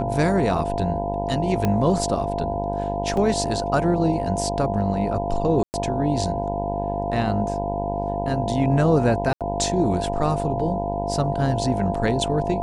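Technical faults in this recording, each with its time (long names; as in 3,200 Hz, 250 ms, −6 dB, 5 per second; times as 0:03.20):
mains buzz 50 Hz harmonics 20 −28 dBFS
whistle 690 Hz −26 dBFS
0:01.65: click −9 dBFS
0:03.17: drop-out 3.2 ms
0:05.63–0:05.74: drop-out 109 ms
0:09.33–0:09.41: drop-out 77 ms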